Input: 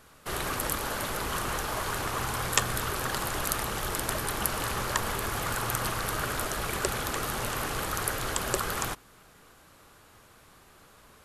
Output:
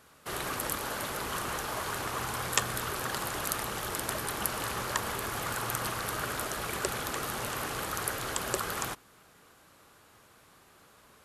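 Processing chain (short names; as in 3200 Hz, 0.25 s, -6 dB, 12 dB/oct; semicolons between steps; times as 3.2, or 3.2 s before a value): HPF 100 Hz 6 dB/oct; gain -2.5 dB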